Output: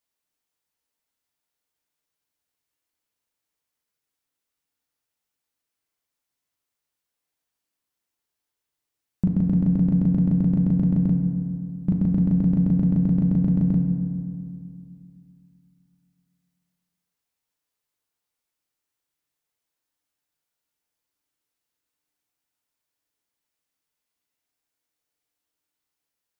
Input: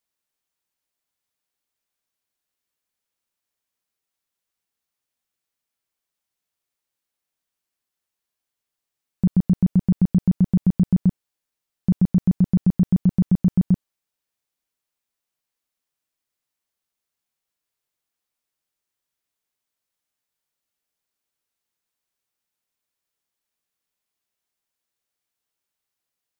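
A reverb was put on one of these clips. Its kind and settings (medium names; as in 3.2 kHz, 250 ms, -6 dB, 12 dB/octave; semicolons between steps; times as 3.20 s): FDN reverb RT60 2.3 s, low-frequency decay 1.25×, high-frequency decay 0.45×, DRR 2.5 dB; trim -1.5 dB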